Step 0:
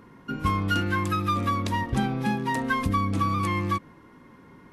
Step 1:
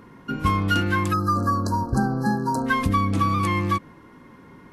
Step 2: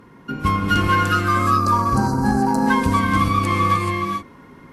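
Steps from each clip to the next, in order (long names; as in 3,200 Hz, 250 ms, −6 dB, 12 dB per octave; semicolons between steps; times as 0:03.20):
time-frequency box erased 0:01.13–0:02.66, 1,700–4,000 Hz; level +3.5 dB
reverb whose tail is shaped and stops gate 460 ms rising, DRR −1 dB; harmonic generator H 7 −34 dB, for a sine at −7 dBFS; level +1.5 dB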